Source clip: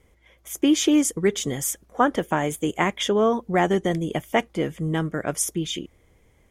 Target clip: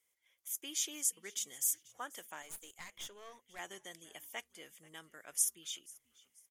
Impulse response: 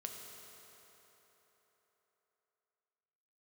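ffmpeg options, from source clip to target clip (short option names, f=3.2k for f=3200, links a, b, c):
-filter_complex "[0:a]aderivative,asplit=3[a][b][c];[b]adelay=486,afreqshift=-92,volume=-22.5dB[d];[c]adelay=972,afreqshift=-184,volume=-31.9dB[e];[a][d][e]amix=inputs=3:normalize=0,asettb=1/sr,asplit=3[f][g][h];[f]atrim=end=2.424[i];[g]atrim=start=2.42:end=3.59,asetpts=PTS-STARTPTS,afade=t=in:d=0.004:c=qsin,afade=t=out:st=1.166:d=0.004:c=qsin,aeval=exprs='(tanh(50.1*val(0)+0.7)-tanh(0.7))/50.1':c=same[j];[h]atrim=start=3.586[k];[i][j]acrossfade=d=0.004:c1=hsin:c2=qsin[l];[l][k]acrossfade=d=0.004:c1=qsin:c2=hsin,volume=-7dB"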